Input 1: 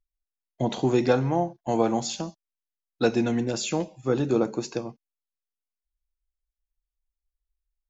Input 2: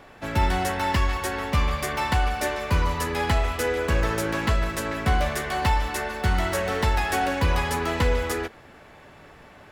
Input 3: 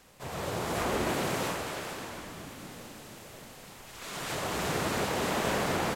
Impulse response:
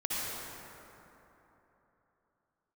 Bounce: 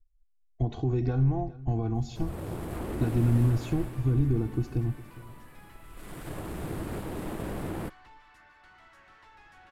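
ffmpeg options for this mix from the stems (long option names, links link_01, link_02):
-filter_complex "[0:a]asubboost=boost=12:cutoff=150,aecho=1:1:2.7:0.88,alimiter=limit=-17.5dB:level=0:latency=1:release=201,volume=-9dB,asplit=2[link_01][link_02];[link_02]volume=-19dB[link_03];[1:a]highpass=frequency=950:width=0.5412,highpass=frequency=950:width=1.3066,acompressor=threshold=-45dB:ratio=1.5,asoftclip=type=tanh:threshold=-36.5dB,adelay=2400,volume=-14dB[link_04];[2:a]aexciter=amount=13.6:drive=2.8:freq=8600,aeval=exprs='0.251*(cos(1*acos(clip(val(0)/0.251,-1,1)))-cos(1*PI/2))+0.0224*(cos(7*acos(clip(val(0)/0.251,-1,1)))-cos(7*PI/2))':channel_layout=same,adelay=1950,volume=-4dB[link_05];[link_04][link_05]amix=inputs=2:normalize=0,equalizer=frequency=320:width_type=o:width=0.36:gain=8,alimiter=level_in=0.5dB:limit=-24dB:level=0:latency=1:release=16,volume=-0.5dB,volume=0dB[link_06];[link_03]aecho=0:1:409:1[link_07];[link_01][link_06][link_07]amix=inputs=3:normalize=0,aemphasis=mode=reproduction:type=riaa"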